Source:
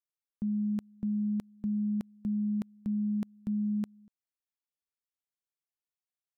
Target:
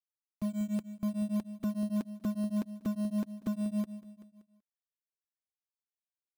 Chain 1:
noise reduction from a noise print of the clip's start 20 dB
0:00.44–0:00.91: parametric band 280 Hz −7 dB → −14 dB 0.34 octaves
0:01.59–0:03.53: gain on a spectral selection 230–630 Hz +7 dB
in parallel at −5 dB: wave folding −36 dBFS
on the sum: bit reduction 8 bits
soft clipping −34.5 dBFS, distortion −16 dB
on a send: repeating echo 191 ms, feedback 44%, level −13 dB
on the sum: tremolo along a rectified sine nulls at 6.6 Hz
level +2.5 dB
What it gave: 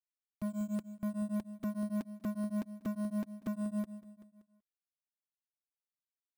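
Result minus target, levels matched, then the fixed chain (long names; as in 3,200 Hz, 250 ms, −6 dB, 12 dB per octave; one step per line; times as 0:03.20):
soft clipping: distortion +8 dB
noise reduction from a noise print of the clip's start 20 dB
0:00.44–0:00.91: parametric band 280 Hz −7 dB → −14 dB 0.34 octaves
0:01.59–0:03.53: gain on a spectral selection 230–630 Hz +7 dB
in parallel at −5 dB: wave folding −36 dBFS
on the sum: bit reduction 8 bits
soft clipping −28 dBFS, distortion −24 dB
on a send: repeating echo 191 ms, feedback 44%, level −13 dB
on the sum: tremolo along a rectified sine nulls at 6.6 Hz
level +2.5 dB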